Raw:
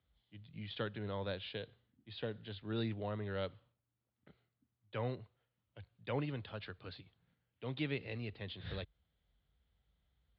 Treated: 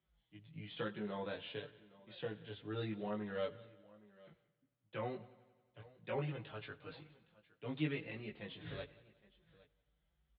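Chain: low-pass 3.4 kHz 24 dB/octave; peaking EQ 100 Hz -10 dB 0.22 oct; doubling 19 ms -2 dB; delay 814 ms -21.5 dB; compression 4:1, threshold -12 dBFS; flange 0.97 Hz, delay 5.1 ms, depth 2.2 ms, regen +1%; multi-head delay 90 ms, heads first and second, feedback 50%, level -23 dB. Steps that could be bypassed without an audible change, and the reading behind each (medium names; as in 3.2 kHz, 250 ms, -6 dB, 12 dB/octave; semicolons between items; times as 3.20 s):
compression, threshold -12 dBFS: peak at its input -24.0 dBFS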